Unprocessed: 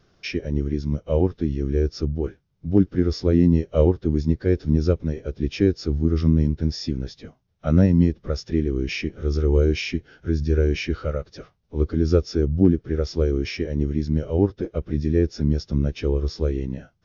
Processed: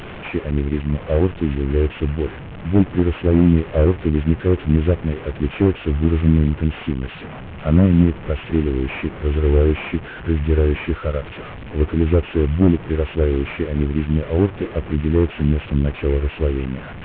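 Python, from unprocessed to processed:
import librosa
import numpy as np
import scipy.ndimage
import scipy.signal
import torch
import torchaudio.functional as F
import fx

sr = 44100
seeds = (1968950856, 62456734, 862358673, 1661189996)

y = fx.delta_mod(x, sr, bps=16000, step_db=-30.5)
y = F.gain(torch.from_numpy(y), 3.5).numpy()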